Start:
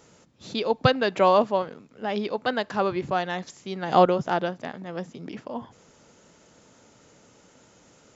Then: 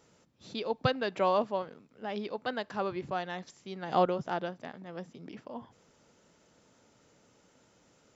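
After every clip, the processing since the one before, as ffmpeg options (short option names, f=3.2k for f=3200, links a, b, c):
-af "bandreject=f=6.7k:w=16,volume=-8.5dB"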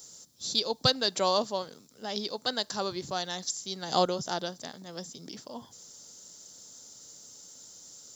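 -af "aexciter=amount=8.3:drive=8.2:freq=3.8k"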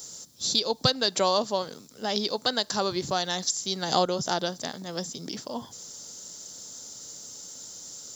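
-af "acompressor=threshold=-31dB:ratio=2,volume=7.5dB"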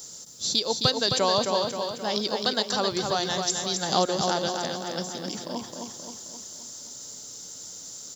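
-af "aecho=1:1:264|528|792|1056|1320|1584|1848:0.562|0.298|0.158|0.0837|0.0444|0.0235|0.0125"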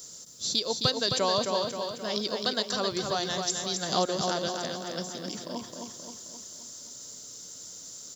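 -af "asuperstop=centerf=830:order=4:qfactor=7.3,volume=-3dB"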